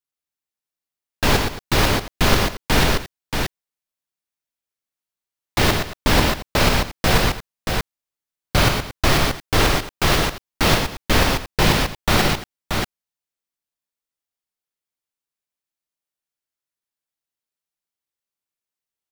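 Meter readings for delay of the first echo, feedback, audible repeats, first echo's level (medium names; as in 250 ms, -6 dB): 58 ms, no regular repeats, 4, -12.0 dB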